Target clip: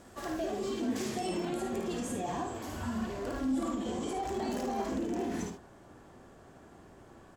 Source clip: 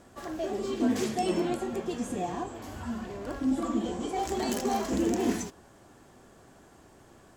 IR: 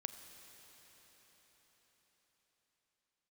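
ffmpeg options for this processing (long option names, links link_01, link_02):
-af "asetnsamples=nb_out_samples=441:pad=0,asendcmd='4.13 highshelf g -8.5',highshelf=frequency=3300:gain=2,alimiter=level_in=3.5dB:limit=-24dB:level=0:latency=1:release=63,volume=-3.5dB,aecho=1:1:53|76:0.501|0.335"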